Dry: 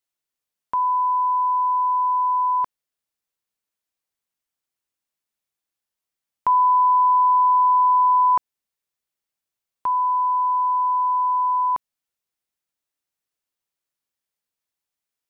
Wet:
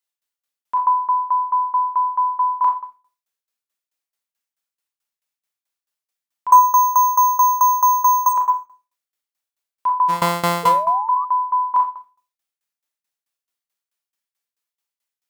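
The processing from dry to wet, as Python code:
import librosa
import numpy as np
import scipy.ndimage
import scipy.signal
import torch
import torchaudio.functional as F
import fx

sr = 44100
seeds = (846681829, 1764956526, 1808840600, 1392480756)

y = fx.sample_sort(x, sr, block=256, at=(10.08, 10.64), fade=0.02)
y = fx.low_shelf(y, sr, hz=440.0, db=-10.5)
y = fx.resample_bad(y, sr, factor=6, down='none', up='hold', at=(6.52, 8.29))
y = fx.rev_schroeder(y, sr, rt60_s=0.5, comb_ms=27, drr_db=-1.5)
y = fx.tremolo_shape(y, sr, shape='saw_down', hz=4.6, depth_pct=90)
y = fx.dynamic_eq(y, sr, hz=1000.0, q=1.7, threshold_db=-37.0, ratio=4.0, max_db=8)
y = fx.spec_paint(y, sr, seeds[0], shape='rise', start_s=10.63, length_s=0.62, low_hz=460.0, high_hz=1200.0, level_db=-30.0)
y = y * librosa.db_to_amplitude(2.0)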